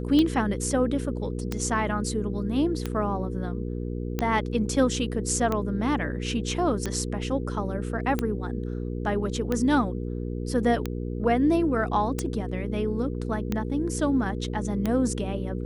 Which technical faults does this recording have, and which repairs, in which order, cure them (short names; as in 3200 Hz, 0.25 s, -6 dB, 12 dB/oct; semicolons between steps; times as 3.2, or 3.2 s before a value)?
hum 60 Hz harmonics 8 -31 dBFS
tick 45 rpm -13 dBFS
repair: de-click; de-hum 60 Hz, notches 8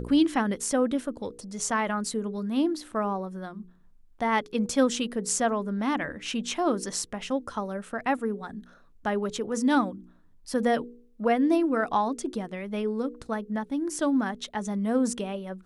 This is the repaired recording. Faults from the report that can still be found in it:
none